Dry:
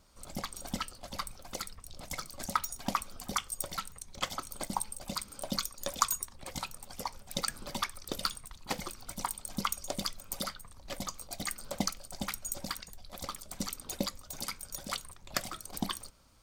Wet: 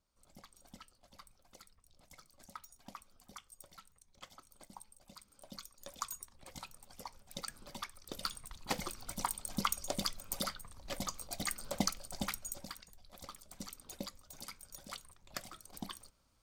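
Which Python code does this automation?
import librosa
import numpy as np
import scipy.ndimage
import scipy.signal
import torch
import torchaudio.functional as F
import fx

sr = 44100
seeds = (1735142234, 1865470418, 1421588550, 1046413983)

y = fx.gain(x, sr, db=fx.line((5.14, -19.0), (6.4, -10.0), (8.01, -10.0), (8.54, -1.0), (12.25, -1.0), (12.73, -10.0)))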